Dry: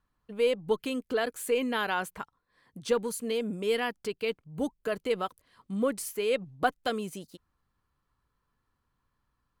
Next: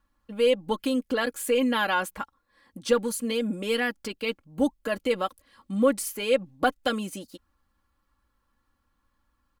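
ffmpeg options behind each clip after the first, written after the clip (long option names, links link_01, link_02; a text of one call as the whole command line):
ffmpeg -i in.wav -af "aecho=1:1:3.6:0.7,volume=3dB" out.wav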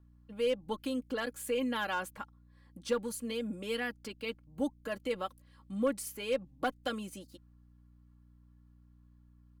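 ffmpeg -i in.wav -filter_complex "[0:a]aeval=exprs='val(0)+0.00316*(sin(2*PI*60*n/s)+sin(2*PI*2*60*n/s)/2+sin(2*PI*3*60*n/s)/3+sin(2*PI*4*60*n/s)/4+sin(2*PI*5*60*n/s)/5)':channel_layout=same,acrossover=split=420[link_01][link_02];[link_02]aeval=exprs='clip(val(0),-1,0.119)':channel_layout=same[link_03];[link_01][link_03]amix=inputs=2:normalize=0,volume=-9dB" out.wav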